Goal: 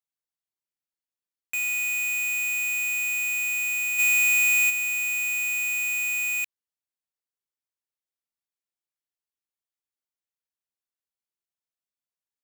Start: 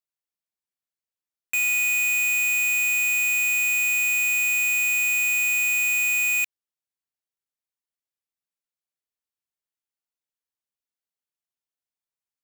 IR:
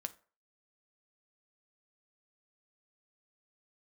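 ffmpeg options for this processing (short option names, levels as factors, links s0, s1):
-filter_complex "[0:a]asplit=3[s0][s1][s2];[s0]afade=t=out:st=3.98:d=0.02[s3];[s1]acontrast=68,afade=t=in:st=3.98:d=0.02,afade=t=out:st=4.69:d=0.02[s4];[s2]afade=t=in:st=4.69:d=0.02[s5];[s3][s4][s5]amix=inputs=3:normalize=0,volume=0.596"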